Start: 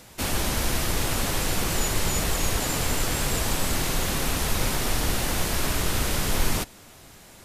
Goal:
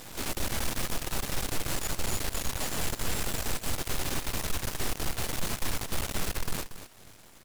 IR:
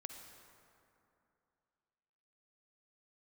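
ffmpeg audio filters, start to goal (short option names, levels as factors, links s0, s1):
-filter_complex "[0:a]asplit=4[s0][s1][s2][s3];[s1]asetrate=29433,aresample=44100,atempo=1.49831,volume=0.178[s4];[s2]asetrate=33038,aresample=44100,atempo=1.33484,volume=0.126[s5];[s3]asetrate=66075,aresample=44100,atempo=0.66742,volume=0.562[s6];[s0][s4][s5][s6]amix=inputs=4:normalize=0,asoftclip=type=hard:threshold=0.0891,alimiter=level_in=2:limit=0.0631:level=0:latency=1,volume=0.501,aeval=exprs='max(val(0),0)':c=same,aecho=1:1:233:0.251,volume=2.11"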